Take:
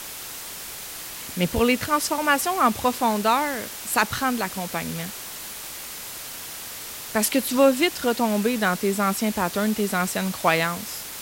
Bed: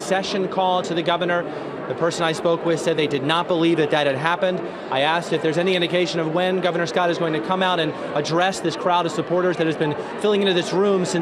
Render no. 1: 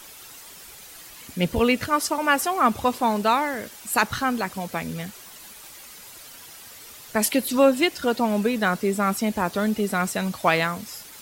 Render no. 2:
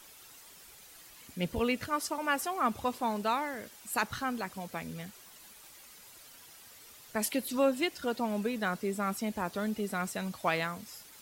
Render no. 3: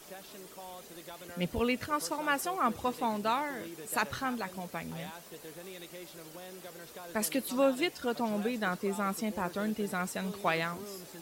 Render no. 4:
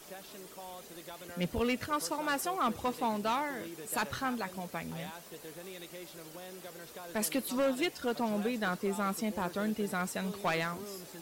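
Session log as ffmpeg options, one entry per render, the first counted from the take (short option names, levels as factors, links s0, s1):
-af "afftdn=nr=10:nf=-36"
-af "volume=0.316"
-filter_complex "[1:a]volume=0.0422[s0];[0:a][s0]amix=inputs=2:normalize=0"
-af "volume=17.8,asoftclip=hard,volume=0.0562"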